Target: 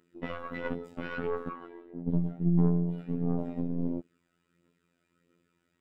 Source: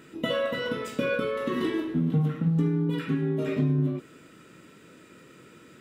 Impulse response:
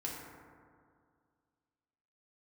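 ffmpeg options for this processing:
-filter_complex "[0:a]afwtdn=0.0282,asettb=1/sr,asplit=3[link_01][link_02][link_03];[link_01]atrim=end=1.484[link_04];[link_02]atrim=start=1.48:end=2.08,asetpts=PTS-STARTPTS,afade=type=in:duration=0.004:curve=qsin,afade=type=out:start_time=0.596:duration=0.004:curve=qsin,acrossover=split=510 2800:gain=0.126 1 0.178[link_05][link_06][link_07];[link_05][link_06][link_07]amix=inputs=3:normalize=0[link_08];[link_03]atrim=start=2.076[link_09];[link_04][link_08]acrossfade=duration=0.004:curve1=hsin:curve2=qsin[link_10];[link_10][link_09]acrossfade=duration=0.004:curve1=qsin:curve2=hsin,acrossover=split=3000[link_11][link_12];[link_11]aphaser=in_gain=1:out_gain=1:delay=1.5:decay=0.52:speed=1.5:type=triangular[link_13];[link_12]alimiter=level_in=24dB:limit=-24dB:level=0:latency=1,volume=-24dB[link_14];[link_13][link_14]amix=inputs=2:normalize=0,aeval=exprs='0.376*(cos(1*acos(clip(val(0)/0.376,-1,1)))-cos(1*PI/2))+0.0596*(cos(4*acos(clip(val(0)/0.376,-1,1)))-cos(4*PI/2))+0.0106*(cos(8*acos(clip(val(0)/0.376,-1,1)))-cos(8*PI/2))':channel_layout=same,afftfilt=real='hypot(re,im)*cos(PI*b)':imag='0':win_size=2048:overlap=0.75,volume=-3.5dB"

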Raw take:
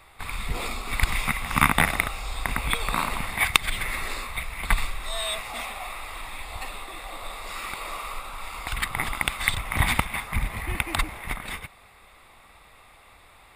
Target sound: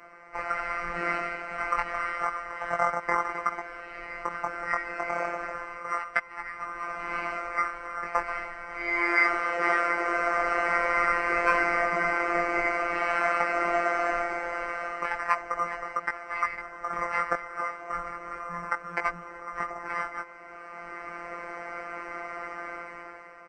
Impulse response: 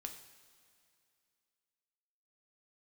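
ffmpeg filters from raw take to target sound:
-filter_complex "[0:a]asplit=2[link_01][link_02];[link_02]alimiter=limit=-12dB:level=0:latency=1:release=296,volume=-1dB[link_03];[link_01][link_03]amix=inputs=2:normalize=0,asetrate=25442,aresample=44100,equalizer=frequency=125:width_type=o:width=1:gain=-11,equalizer=frequency=250:width_type=o:width=1:gain=8,equalizer=frequency=1000:width_type=o:width=1:gain=6,equalizer=frequency=2000:width_type=o:width=1:gain=12,equalizer=frequency=4000:width_type=o:width=1:gain=-10,equalizer=frequency=8000:width_type=o:width=1:gain=-11,dynaudnorm=framelen=220:gausssize=7:maxgain=12.5dB,flanger=delay=16.5:depth=5.3:speed=0.31,afftfilt=real='hypot(re,im)*cos(PI*b)':imag='0':win_size=1024:overlap=0.75,asplit=2[link_04][link_05];[link_05]adelay=298,lowpass=frequency=1000:poles=1,volume=-18dB,asplit=2[link_06][link_07];[link_07]adelay=298,lowpass=frequency=1000:poles=1,volume=0.39,asplit=2[link_08][link_09];[link_09]adelay=298,lowpass=frequency=1000:poles=1,volume=0.39[link_10];[link_04][link_06][link_08][link_10]amix=inputs=4:normalize=0,adynamicequalizer=threshold=0.00251:dfrequency=100:dqfactor=0.95:tfrequency=100:tqfactor=0.95:attack=5:release=100:ratio=0.375:range=3.5:mode=cutabove:tftype=bell,highpass=frequency=54:poles=1,volume=-2dB"

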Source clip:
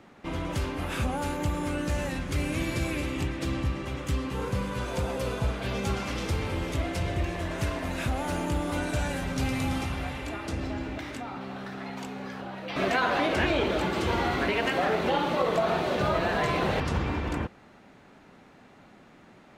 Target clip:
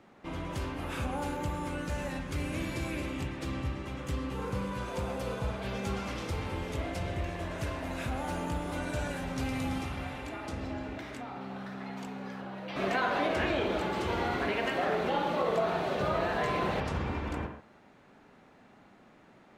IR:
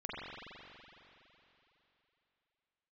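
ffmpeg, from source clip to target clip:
-filter_complex "[0:a]asplit=2[link_01][link_02];[link_02]equalizer=frequency=700:width=0.32:gain=7[link_03];[1:a]atrim=start_sample=2205,atrim=end_sample=6615[link_04];[link_03][link_04]afir=irnorm=-1:irlink=0,volume=-6.5dB[link_05];[link_01][link_05]amix=inputs=2:normalize=0,volume=-8.5dB"

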